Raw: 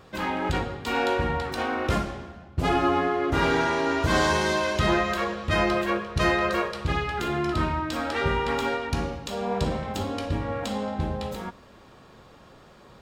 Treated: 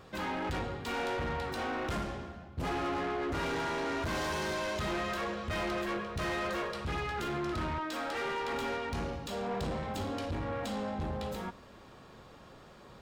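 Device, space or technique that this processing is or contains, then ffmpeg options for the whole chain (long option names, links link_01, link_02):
saturation between pre-emphasis and de-emphasis: -filter_complex "[0:a]asettb=1/sr,asplit=3[link_01][link_02][link_03];[link_01]atrim=end=7.784[link_04];[link_02]atrim=start=7.78:end=8.53,asetpts=PTS-STARTPTS,afade=type=in:duration=0.004:curve=qsin,afade=type=out:start_time=0.746:duration=0.004:curve=qsin,highpass=320[link_05];[link_03]atrim=start=8.526[link_06];[link_04][link_05]acrossfade=duration=0.004:curve1=hsin:curve2=qsin[link_07];[link_07][link_06]acrossfade=duration=0.004:curve1=qsin:curve2=hsin,highshelf=frequency=4200:gain=8,asoftclip=type=tanh:threshold=-28.5dB,highshelf=frequency=4200:gain=-8,volume=-2.5dB"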